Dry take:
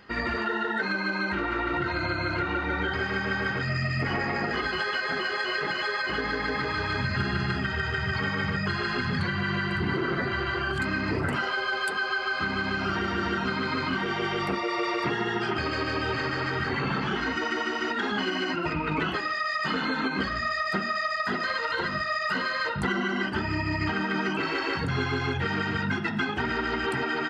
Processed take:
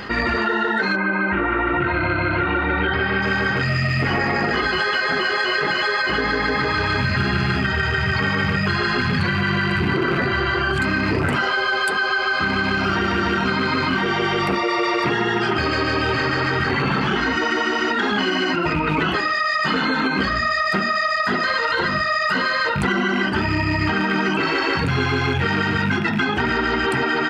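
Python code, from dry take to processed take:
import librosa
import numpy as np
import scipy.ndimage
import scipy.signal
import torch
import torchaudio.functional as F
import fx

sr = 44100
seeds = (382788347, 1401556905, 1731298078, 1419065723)

y = fx.rattle_buzz(x, sr, strikes_db=-30.0, level_db=-29.0)
y = fx.lowpass(y, sr, hz=fx.line((0.95, 2400.0), (3.21, 4100.0)), slope=24, at=(0.95, 3.21), fade=0.02)
y = fx.env_flatten(y, sr, amount_pct=50)
y = y * 10.0 ** (6.0 / 20.0)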